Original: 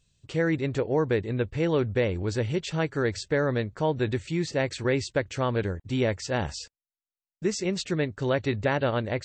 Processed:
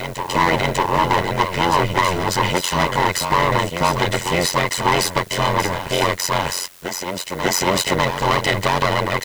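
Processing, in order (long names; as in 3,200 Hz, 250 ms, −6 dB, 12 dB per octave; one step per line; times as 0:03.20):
lower of the sound and its delayed copy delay 1 ms
high-pass filter 180 Hz 12 dB per octave
low-shelf EQ 250 Hz −7.5 dB
comb filter 2 ms, depth 91%
transient designer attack +3 dB, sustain +7 dB
leveller curve on the samples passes 3
in parallel at −9 dB: bit-depth reduction 6 bits, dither triangular
on the sum: amplitude modulation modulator 90 Hz, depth 90%
on a send: backwards echo 597 ms −7.5 dB
on the sum: level +2.5 dB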